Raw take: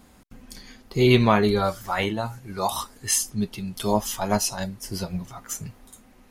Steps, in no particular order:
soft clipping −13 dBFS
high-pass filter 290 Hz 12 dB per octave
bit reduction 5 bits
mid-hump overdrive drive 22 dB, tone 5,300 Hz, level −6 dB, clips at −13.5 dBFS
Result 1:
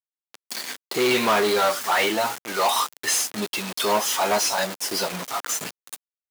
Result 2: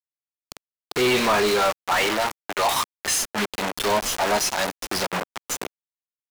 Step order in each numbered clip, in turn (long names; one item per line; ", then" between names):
soft clipping, then mid-hump overdrive, then bit reduction, then high-pass filter
bit reduction, then soft clipping, then high-pass filter, then mid-hump overdrive